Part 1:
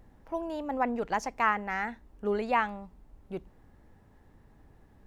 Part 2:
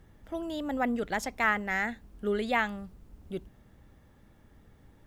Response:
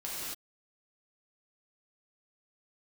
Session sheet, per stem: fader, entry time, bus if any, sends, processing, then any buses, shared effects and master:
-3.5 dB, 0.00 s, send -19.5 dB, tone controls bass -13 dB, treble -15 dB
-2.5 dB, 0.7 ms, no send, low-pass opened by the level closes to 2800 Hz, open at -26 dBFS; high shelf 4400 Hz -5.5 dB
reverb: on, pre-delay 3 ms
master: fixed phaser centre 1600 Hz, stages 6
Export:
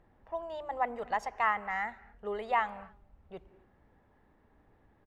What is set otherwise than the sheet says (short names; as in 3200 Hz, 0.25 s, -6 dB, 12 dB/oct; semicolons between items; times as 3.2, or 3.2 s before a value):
stem 2 -2.5 dB -> -11.0 dB; master: missing fixed phaser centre 1600 Hz, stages 6